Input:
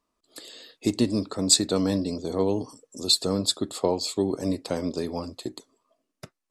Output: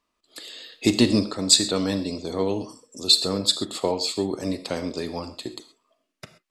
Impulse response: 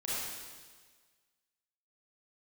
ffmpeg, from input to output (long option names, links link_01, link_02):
-filter_complex "[0:a]equalizer=frequency=2600:width=0.62:gain=8,asettb=1/sr,asplit=3[link_01][link_02][link_03];[link_01]atrim=end=0.724[link_04];[link_02]atrim=start=0.72:end=1.25,asetpts=PTS-STARTPTS,afade=type=in:duration=0.004:curve=qsin,afade=type=out:start_time=0.526:duration=0.004:curve=qsin,acontrast=43[link_05];[link_03]atrim=start=1.246[link_06];[link_04][link_05]acrossfade=duration=0.004:curve1=hsin:curve2=qsin[link_07];[link_07][link_06]acrossfade=duration=0.004:curve1=qsin:curve2=hsin,asplit=2[link_08][link_09];[1:a]atrim=start_sample=2205,atrim=end_sample=6174[link_10];[link_09][link_10]afir=irnorm=-1:irlink=0,volume=-12dB[link_11];[link_08][link_11]amix=inputs=2:normalize=0,volume=-2.5dB"